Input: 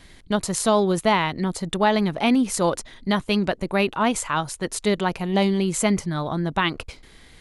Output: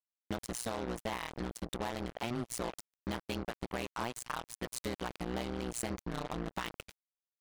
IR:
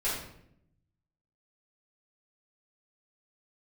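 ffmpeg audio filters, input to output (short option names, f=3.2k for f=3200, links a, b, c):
-af "acompressor=threshold=-25dB:ratio=10,tremolo=f=120:d=0.947,acrusher=bits=4:mix=0:aa=0.5,volume=-5.5dB"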